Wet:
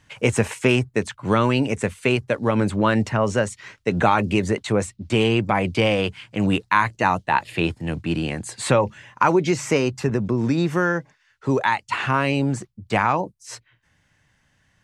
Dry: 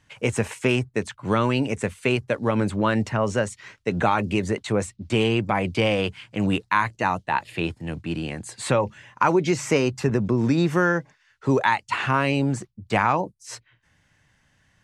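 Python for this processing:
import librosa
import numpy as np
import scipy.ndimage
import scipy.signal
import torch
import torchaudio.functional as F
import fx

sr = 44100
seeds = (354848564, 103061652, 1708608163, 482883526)

y = fx.rider(x, sr, range_db=4, speed_s=2.0)
y = y * 10.0 ** (2.0 / 20.0)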